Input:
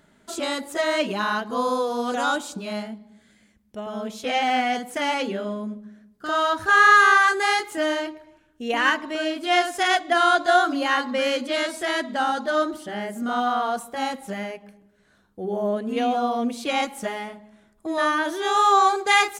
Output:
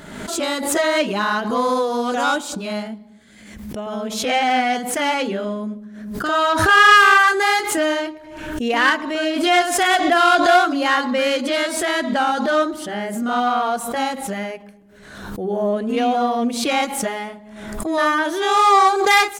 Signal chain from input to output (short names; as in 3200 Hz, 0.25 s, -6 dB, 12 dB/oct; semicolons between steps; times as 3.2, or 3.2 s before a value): self-modulated delay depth 0.075 ms; backwards sustainer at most 48 dB/s; gain +4 dB